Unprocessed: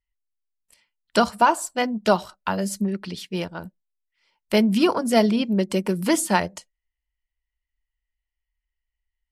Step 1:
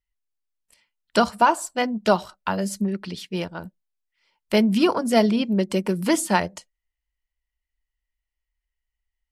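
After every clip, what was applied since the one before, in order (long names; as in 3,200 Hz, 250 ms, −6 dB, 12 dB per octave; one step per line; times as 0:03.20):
high-shelf EQ 9,000 Hz −3.5 dB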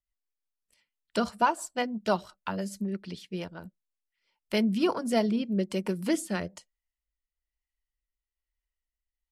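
rotating-speaker cabinet horn 6 Hz, later 1.1 Hz, at 0:04.05
level −5.5 dB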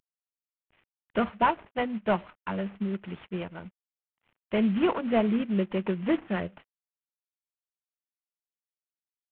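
variable-slope delta modulation 16 kbit/s
level +2 dB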